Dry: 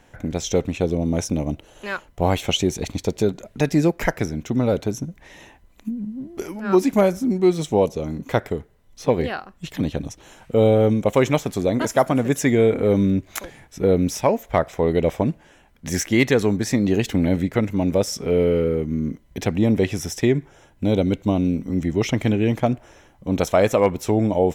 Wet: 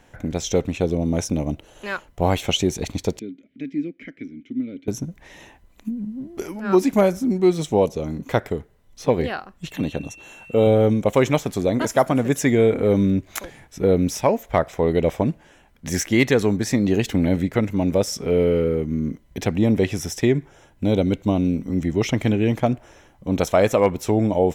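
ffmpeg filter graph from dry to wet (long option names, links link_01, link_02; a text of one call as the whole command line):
ffmpeg -i in.wav -filter_complex "[0:a]asettb=1/sr,asplit=3[link_01][link_02][link_03];[link_01]atrim=end=3.194[link_04];[link_02]atrim=start=3.19:end=4.88,asetpts=PTS-STARTPTS,afade=type=in:duration=0.004:curve=qsin,afade=type=out:start_time=1.686:duration=0.004:curve=qsin,highshelf=frequency=5400:gain=-10.5,acompressor=mode=upward:threshold=-34dB:ratio=2.5:attack=3.2:release=140:knee=2.83:detection=peak,asplit=3[link_05][link_06][link_07];[link_05]bandpass=frequency=270:width_type=q:width=8,volume=0dB[link_08];[link_06]bandpass=frequency=2290:width_type=q:width=8,volume=-6dB[link_09];[link_07]bandpass=frequency=3010:width_type=q:width=8,volume=-9dB[link_10];[link_08][link_09][link_10]amix=inputs=3:normalize=0[link_11];[link_03]atrim=start=4.876[link_12];[link_04][link_11]acrossfade=duration=0.004:curve1=hsin:curve2=qsin[link_13];[link_13][link_12]acrossfade=duration=0.004:curve1=qsin:curve2=hsin,asettb=1/sr,asplit=3[link_14][link_15][link_16];[link_14]atrim=end=9.714[link_17];[link_15]atrim=start=9.71:end=10.67,asetpts=PTS-STARTPTS,afade=type=in:duration=0.004:curve=qsin,afade=type=out:start_time=0.956:duration=0.004:curve=qsin,lowshelf=frequency=93:gain=-8,aeval=exprs='val(0)+0.00708*sin(2*PI*2700*n/s)':channel_layout=same,asuperstop=centerf=5000:order=4:qfactor=6.2[link_18];[link_16]atrim=start=10.666[link_19];[link_17][link_18]acrossfade=duration=0.004:curve1=hsin:curve2=qsin[link_20];[link_20][link_19]acrossfade=duration=0.004:curve1=qsin:curve2=hsin" out.wav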